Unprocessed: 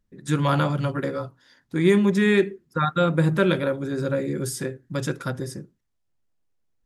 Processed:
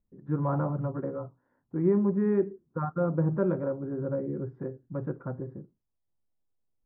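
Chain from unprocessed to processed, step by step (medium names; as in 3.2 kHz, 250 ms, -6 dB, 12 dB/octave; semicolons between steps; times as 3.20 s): low-pass 1.1 kHz 24 dB/octave; trim -6 dB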